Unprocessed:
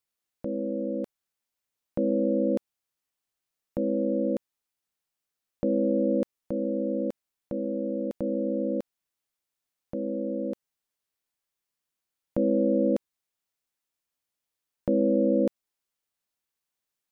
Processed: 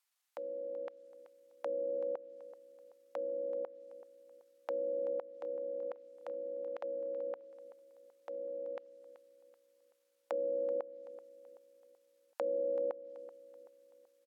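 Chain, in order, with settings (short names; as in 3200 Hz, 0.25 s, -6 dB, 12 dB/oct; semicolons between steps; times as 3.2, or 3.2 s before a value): HPF 730 Hz 24 dB/oct; treble ducked by the level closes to 930 Hz, closed at -38.5 dBFS; tempo 1.2×; on a send: feedback echo 0.381 s, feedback 44%, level -15.5 dB; on the sum: gain +4.5 dB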